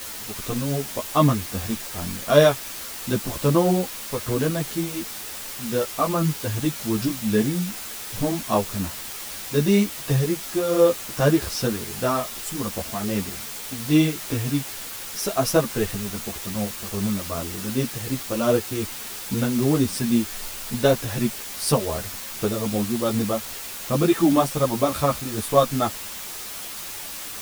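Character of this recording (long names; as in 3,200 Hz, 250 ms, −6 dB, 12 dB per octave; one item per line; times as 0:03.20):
tremolo triangle 2.6 Hz, depth 50%
a quantiser's noise floor 6 bits, dither triangular
a shimmering, thickened sound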